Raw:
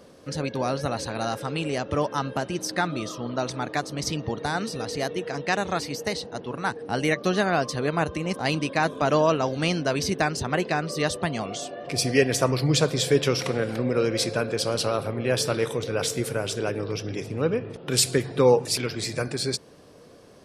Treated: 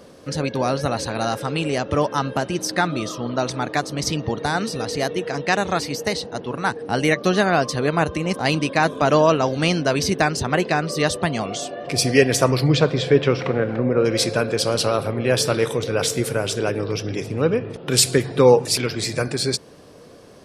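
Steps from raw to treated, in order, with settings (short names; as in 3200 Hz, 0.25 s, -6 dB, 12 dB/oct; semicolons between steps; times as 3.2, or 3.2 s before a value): 12.68–14.04 LPF 3700 Hz -> 1600 Hz 12 dB/oct; gain +5 dB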